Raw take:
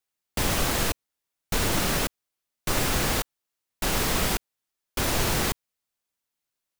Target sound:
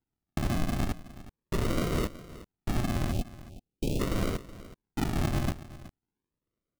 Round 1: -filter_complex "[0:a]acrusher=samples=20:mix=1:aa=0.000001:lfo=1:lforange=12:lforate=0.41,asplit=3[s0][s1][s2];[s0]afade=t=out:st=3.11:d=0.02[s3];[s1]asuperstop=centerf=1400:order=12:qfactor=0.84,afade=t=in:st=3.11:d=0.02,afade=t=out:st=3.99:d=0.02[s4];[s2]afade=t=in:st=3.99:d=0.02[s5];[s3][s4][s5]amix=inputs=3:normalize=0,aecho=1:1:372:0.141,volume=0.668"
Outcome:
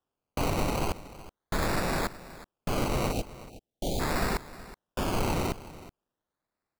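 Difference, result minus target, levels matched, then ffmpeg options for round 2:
decimation with a swept rate: distortion -4 dB
-filter_complex "[0:a]acrusher=samples=73:mix=1:aa=0.000001:lfo=1:lforange=43.8:lforate=0.41,asplit=3[s0][s1][s2];[s0]afade=t=out:st=3.11:d=0.02[s3];[s1]asuperstop=centerf=1400:order=12:qfactor=0.84,afade=t=in:st=3.11:d=0.02,afade=t=out:st=3.99:d=0.02[s4];[s2]afade=t=in:st=3.99:d=0.02[s5];[s3][s4][s5]amix=inputs=3:normalize=0,aecho=1:1:372:0.141,volume=0.668"

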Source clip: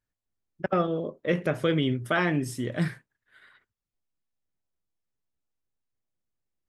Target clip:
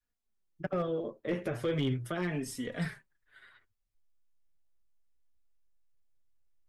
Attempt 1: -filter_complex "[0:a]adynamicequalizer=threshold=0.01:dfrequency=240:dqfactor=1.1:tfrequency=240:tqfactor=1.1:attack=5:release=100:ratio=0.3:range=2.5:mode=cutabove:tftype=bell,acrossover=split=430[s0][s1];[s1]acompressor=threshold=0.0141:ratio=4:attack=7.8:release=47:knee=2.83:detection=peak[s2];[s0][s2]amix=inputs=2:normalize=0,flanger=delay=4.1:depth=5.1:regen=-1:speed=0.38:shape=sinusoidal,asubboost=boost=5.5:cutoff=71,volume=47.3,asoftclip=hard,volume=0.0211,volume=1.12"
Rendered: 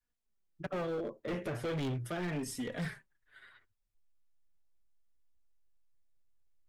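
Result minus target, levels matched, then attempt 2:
overload inside the chain: distortion +15 dB
-filter_complex "[0:a]adynamicequalizer=threshold=0.01:dfrequency=240:dqfactor=1.1:tfrequency=240:tqfactor=1.1:attack=5:release=100:ratio=0.3:range=2.5:mode=cutabove:tftype=bell,acrossover=split=430[s0][s1];[s1]acompressor=threshold=0.0141:ratio=4:attack=7.8:release=47:knee=2.83:detection=peak[s2];[s0][s2]amix=inputs=2:normalize=0,flanger=delay=4.1:depth=5.1:regen=-1:speed=0.38:shape=sinusoidal,asubboost=boost=5.5:cutoff=71,volume=17.8,asoftclip=hard,volume=0.0562,volume=1.12"

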